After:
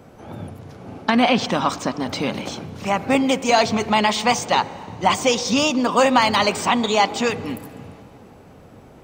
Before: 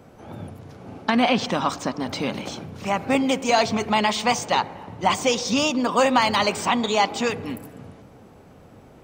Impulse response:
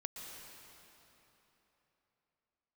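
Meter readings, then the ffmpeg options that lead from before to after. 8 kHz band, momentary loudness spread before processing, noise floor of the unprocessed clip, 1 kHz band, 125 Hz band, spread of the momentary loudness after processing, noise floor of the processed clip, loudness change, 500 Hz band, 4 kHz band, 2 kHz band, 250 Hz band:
+2.5 dB, 18 LU, -49 dBFS, +3.0 dB, +2.5 dB, 17 LU, -46 dBFS, +2.5 dB, +2.5 dB, +2.5 dB, +2.5 dB, +3.0 dB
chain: -filter_complex "[0:a]asplit=2[a][b];[1:a]atrim=start_sample=2205[c];[b][c]afir=irnorm=-1:irlink=0,volume=-17dB[d];[a][d]amix=inputs=2:normalize=0,volume=2dB"

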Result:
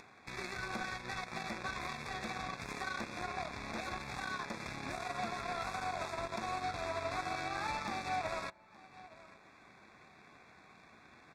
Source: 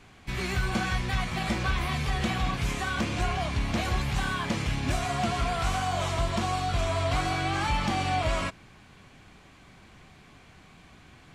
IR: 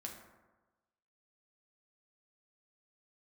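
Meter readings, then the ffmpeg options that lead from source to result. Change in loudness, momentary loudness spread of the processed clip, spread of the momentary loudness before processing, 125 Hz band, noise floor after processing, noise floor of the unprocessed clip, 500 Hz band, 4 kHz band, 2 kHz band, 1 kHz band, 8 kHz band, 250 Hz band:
-11.0 dB, 21 LU, 2 LU, -20.0 dB, -61 dBFS, -54 dBFS, -9.0 dB, -12.0 dB, -8.5 dB, -8.5 dB, -11.5 dB, -14.0 dB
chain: -filter_complex "[0:a]highpass=f=570:p=1,aemphasis=mode=reproduction:type=75kf,aecho=1:1:867:0.075,acompressor=mode=upward:threshold=-35dB:ratio=2.5,asplit=2[a][b];[1:a]atrim=start_sample=2205[c];[b][c]afir=irnorm=-1:irlink=0,volume=-7.5dB[d];[a][d]amix=inputs=2:normalize=0,aeval=exprs='0.126*(cos(1*acos(clip(val(0)/0.126,-1,1)))-cos(1*PI/2))+0.0158*(cos(7*acos(clip(val(0)/0.126,-1,1)))-cos(7*PI/2))':c=same,acompressor=threshold=-35dB:ratio=5,alimiter=level_in=4.5dB:limit=-24dB:level=0:latency=1:release=44,volume=-4.5dB,asuperstop=centerf=3000:order=12:qfactor=4.5,volume=2dB"

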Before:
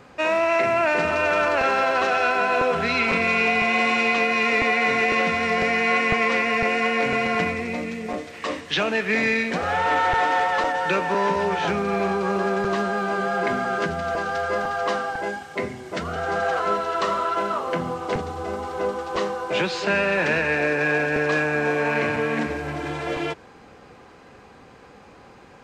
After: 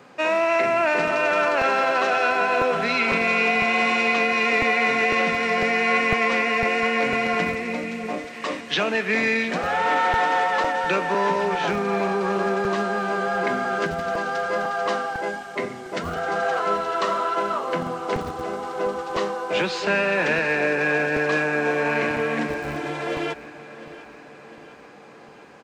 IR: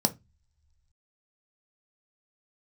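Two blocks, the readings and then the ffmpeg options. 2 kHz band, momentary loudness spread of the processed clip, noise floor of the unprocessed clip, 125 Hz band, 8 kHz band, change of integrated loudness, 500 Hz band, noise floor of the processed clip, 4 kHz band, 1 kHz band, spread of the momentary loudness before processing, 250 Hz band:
0.0 dB, 10 LU, -48 dBFS, -2.0 dB, 0.0 dB, 0.0 dB, 0.0 dB, -44 dBFS, 0.0 dB, 0.0 dB, 9 LU, -0.5 dB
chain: -filter_complex "[0:a]acrossover=split=120|3900[a][b][c];[a]acrusher=bits=5:mix=0:aa=0.000001[d];[d][b][c]amix=inputs=3:normalize=0,aecho=1:1:705|1410|2115|2820|3525|4230:0.141|0.0833|0.0492|0.029|0.0171|0.0101"

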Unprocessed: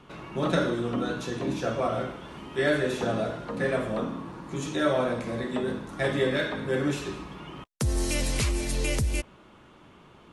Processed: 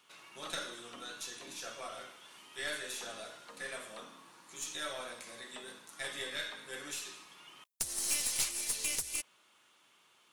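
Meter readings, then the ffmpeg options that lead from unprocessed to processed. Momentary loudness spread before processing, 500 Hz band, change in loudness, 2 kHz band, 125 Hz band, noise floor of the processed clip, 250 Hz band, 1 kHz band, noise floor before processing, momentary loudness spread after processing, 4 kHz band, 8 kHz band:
11 LU, -20.0 dB, -9.0 dB, -9.5 dB, -30.0 dB, -67 dBFS, -25.0 dB, -14.0 dB, -54 dBFS, 19 LU, -3.0 dB, +2.5 dB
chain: -af "aderivative,aeval=exprs='(tanh(25.1*val(0)+0.55)-tanh(0.55))/25.1':c=same,volume=5dB"

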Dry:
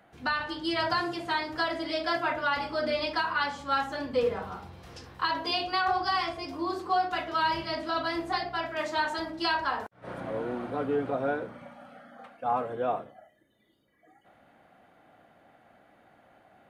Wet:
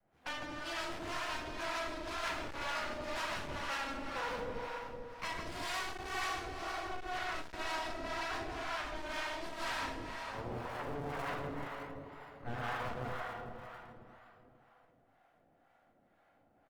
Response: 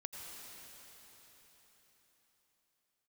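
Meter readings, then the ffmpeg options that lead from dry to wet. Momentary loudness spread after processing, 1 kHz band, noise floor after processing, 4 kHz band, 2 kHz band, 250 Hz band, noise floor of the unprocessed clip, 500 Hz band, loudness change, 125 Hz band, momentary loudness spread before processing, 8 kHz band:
8 LU, -10.5 dB, -70 dBFS, -9.0 dB, -7.5 dB, -11.0 dB, -63 dBFS, -11.0 dB, -10.0 dB, -2.5 dB, 9 LU, n/a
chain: -filter_complex "[0:a]aeval=exprs='if(lt(val(0),0),0.251*val(0),val(0))':c=same,aecho=1:1:37.9|157.4:0.562|0.891,aeval=exprs='0.224*(cos(1*acos(clip(val(0)/0.224,-1,1)))-cos(1*PI/2))+0.00224*(cos(3*acos(clip(val(0)/0.224,-1,1)))-cos(3*PI/2))+0.1*(cos(4*acos(clip(val(0)/0.224,-1,1)))-cos(4*PI/2))+0.0178*(cos(7*acos(clip(val(0)/0.224,-1,1)))-cos(7*PI/2))+0.0178*(cos(8*acos(clip(val(0)/0.224,-1,1)))-cos(8*PI/2))':c=same,highshelf=f=2.7k:g=-9[a];[1:a]atrim=start_sample=2205,asetrate=61740,aresample=44100[b];[a][b]afir=irnorm=-1:irlink=0,acrossover=split=200|780|3900[c][d][e][f];[c]acrusher=samples=35:mix=1:aa=0.000001:lfo=1:lforange=35:lforate=0.47[g];[g][d][e][f]amix=inputs=4:normalize=0,acrossover=split=620[h][i];[h]aeval=exprs='val(0)*(1-0.7/2+0.7/2*cos(2*PI*2*n/s))':c=same[j];[i]aeval=exprs='val(0)*(1-0.7/2-0.7/2*cos(2*PI*2*n/s))':c=same[k];[j][k]amix=inputs=2:normalize=0,asoftclip=type=hard:threshold=-39dB,adynamicequalizer=threshold=0.00112:dfrequency=280:dqfactor=0.84:tfrequency=280:tqfactor=0.84:attack=5:release=100:ratio=0.375:range=1.5:mode=cutabove:tftype=bell,volume=8dB" -ar 48000 -c:a libopus -b:a 48k

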